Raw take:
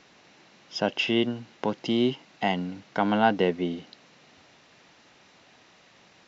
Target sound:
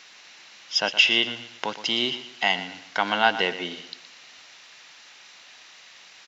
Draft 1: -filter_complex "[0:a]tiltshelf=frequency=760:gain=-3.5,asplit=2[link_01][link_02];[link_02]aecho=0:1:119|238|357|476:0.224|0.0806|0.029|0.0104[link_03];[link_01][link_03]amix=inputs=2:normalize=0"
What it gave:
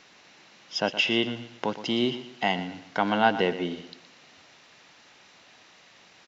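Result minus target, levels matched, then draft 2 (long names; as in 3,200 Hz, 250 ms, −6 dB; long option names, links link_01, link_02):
1,000 Hz band +3.0 dB
-filter_complex "[0:a]tiltshelf=frequency=760:gain=-12,asplit=2[link_01][link_02];[link_02]aecho=0:1:119|238|357|476:0.224|0.0806|0.029|0.0104[link_03];[link_01][link_03]amix=inputs=2:normalize=0"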